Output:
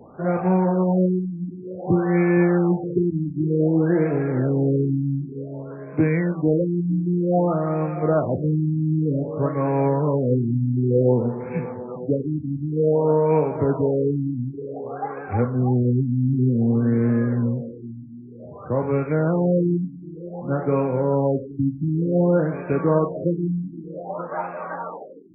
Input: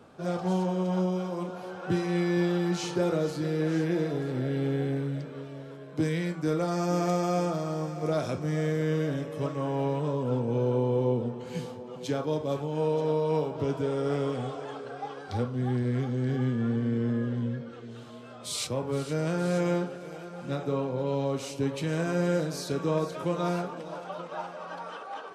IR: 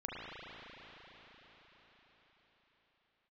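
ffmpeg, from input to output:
-af "afftfilt=real='re*lt(b*sr/1024,310*pow(2700/310,0.5+0.5*sin(2*PI*0.54*pts/sr)))':imag='im*lt(b*sr/1024,310*pow(2700/310,0.5+0.5*sin(2*PI*0.54*pts/sr)))':win_size=1024:overlap=0.75,volume=8.5dB"

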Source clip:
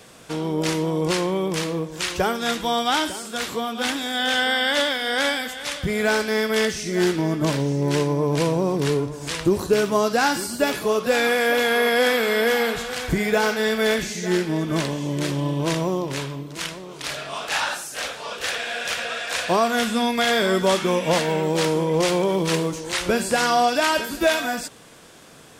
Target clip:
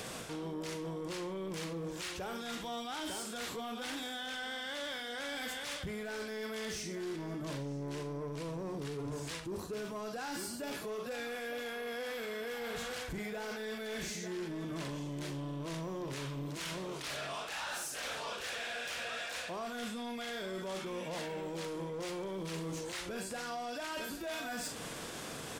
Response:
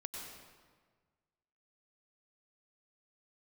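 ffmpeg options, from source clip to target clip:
-af "aecho=1:1:42|67:0.282|0.119,areverse,acompressor=threshold=-32dB:ratio=16,areverse,asoftclip=type=tanh:threshold=-32dB,alimiter=level_in=20dB:limit=-24dB:level=0:latency=1:release=258,volume=-20dB,volume=9.5dB"

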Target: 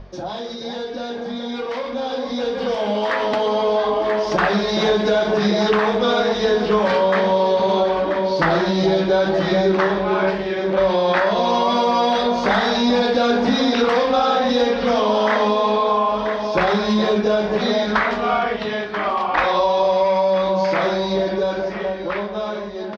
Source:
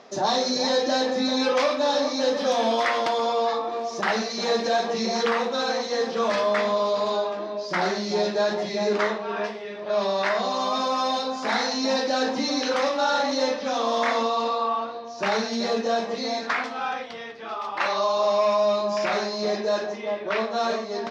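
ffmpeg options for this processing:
-af "aeval=exprs='val(0)+0.0141*(sin(2*PI*50*n/s)+sin(2*PI*2*50*n/s)/2+sin(2*PI*3*50*n/s)/3+sin(2*PI*4*50*n/s)/4+sin(2*PI*5*50*n/s)/5)':c=same,bass=f=250:g=5,treble=f=4k:g=-7,aecho=1:1:904:0.224,acompressor=threshold=-25dB:ratio=6,bandreject=f=50:t=h:w=6,bandreject=f=100:t=h:w=6,bandreject=f=150:t=h:w=6,bandreject=f=200:t=h:w=6,bandreject=f=250:t=h:w=6,dynaudnorm=f=410:g=13:m=12dB,asetrate=40517,aresample=44100"

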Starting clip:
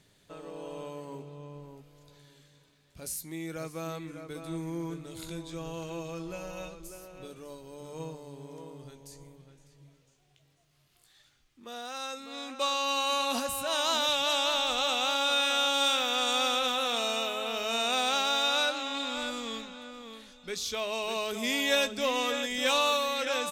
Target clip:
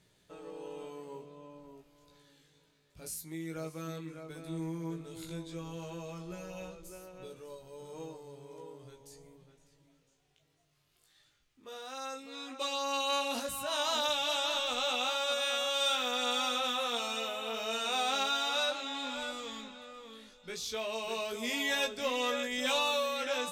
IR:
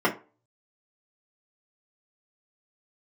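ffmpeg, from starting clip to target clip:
-filter_complex "[0:a]asplit=2[a][b];[1:a]atrim=start_sample=2205[c];[b][c]afir=irnorm=-1:irlink=0,volume=-30dB[d];[a][d]amix=inputs=2:normalize=0,flanger=delay=16:depth=3:speed=0.13,volume=-1.5dB"

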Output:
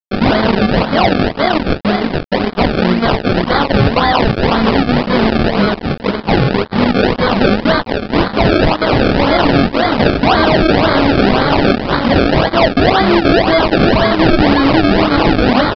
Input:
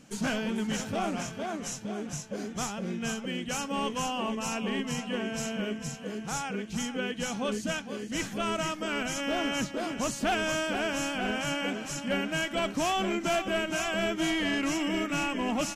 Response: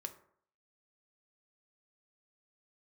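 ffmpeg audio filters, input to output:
-af "highpass=f=280:p=1,adynamicequalizer=threshold=0.00251:dfrequency=440:dqfactor=4.7:tfrequency=440:tqfactor=4.7:attack=5:release=100:ratio=0.375:range=2.5:mode=cutabove:tftype=bell,flanger=delay=20:depth=2.3:speed=1.6,aresample=16000,aeval=exprs='sgn(val(0))*max(abs(val(0))-0.00299,0)':c=same,aresample=44100,acrusher=samples=31:mix=1:aa=0.000001:lfo=1:lforange=31:lforate=1.9,aeval=exprs='sgn(val(0))*max(abs(val(0))-0.00133,0)':c=same,aresample=11025,aresample=44100,alimiter=level_in=32.5dB:limit=-1dB:release=50:level=0:latency=1,volume=-1.5dB"

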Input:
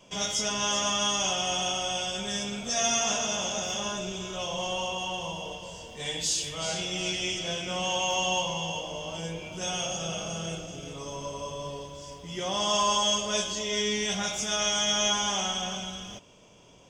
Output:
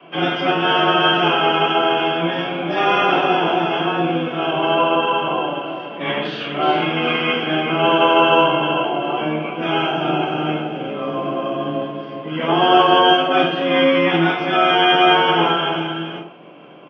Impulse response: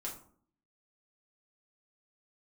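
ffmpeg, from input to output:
-filter_complex "[0:a]highpass=f=160:t=q:w=0.5412,highpass=f=160:t=q:w=1.307,lowpass=f=3.1k:t=q:w=0.5176,lowpass=f=3.1k:t=q:w=0.7071,lowpass=f=3.1k:t=q:w=1.932,afreqshift=170,acontrast=82,asetrate=40440,aresample=44100,atempo=1.09051[a];[1:a]atrim=start_sample=2205,afade=t=out:st=0.2:d=0.01,atrim=end_sample=9261[b];[a][b]afir=irnorm=-1:irlink=0,asplit=2[c][d];[d]asetrate=22050,aresample=44100,atempo=2,volume=-4dB[e];[c][e]amix=inputs=2:normalize=0,volume=7.5dB"

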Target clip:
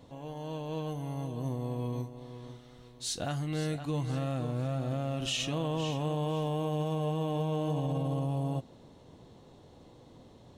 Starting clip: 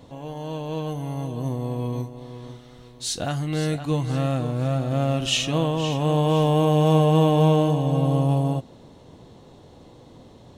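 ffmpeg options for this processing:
-af "alimiter=limit=-16dB:level=0:latency=1:release=47,volume=-7dB"

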